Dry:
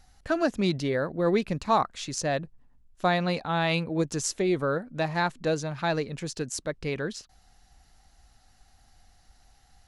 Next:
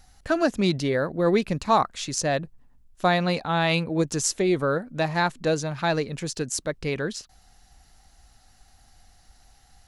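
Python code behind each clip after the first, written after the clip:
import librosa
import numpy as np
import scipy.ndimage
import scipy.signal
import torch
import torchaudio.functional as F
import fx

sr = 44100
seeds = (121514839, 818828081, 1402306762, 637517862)

y = fx.high_shelf(x, sr, hz=7100.0, db=4.5)
y = F.gain(torch.from_numpy(y), 3.0).numpy()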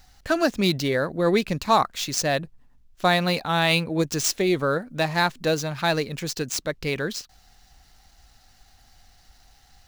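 y = scipy.ndimage.median_filter(x, 5, mode='constant')
y = fx.high_shelf(y, sr, hz=2500.0, db=8.5)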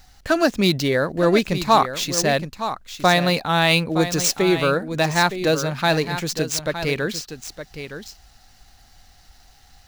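y = x + 10.0 ** (-10.5 / 20.0) * np.pad(x, (int(915 * sr / 1000.0), 0))[:len(x)]
y = F.gain(torch.from_numpy(y), 3.5).numpy()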